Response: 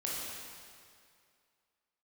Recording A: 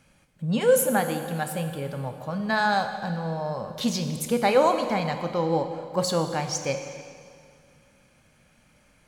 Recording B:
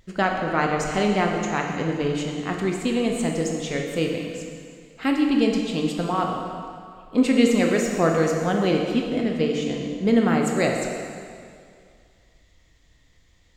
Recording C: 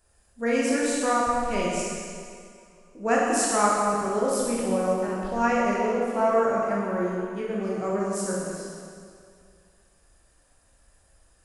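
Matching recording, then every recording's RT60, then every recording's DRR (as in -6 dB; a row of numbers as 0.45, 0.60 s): C; 2.2, 2.3, 2.3 s; 6.5, 1.0, -5.5 dB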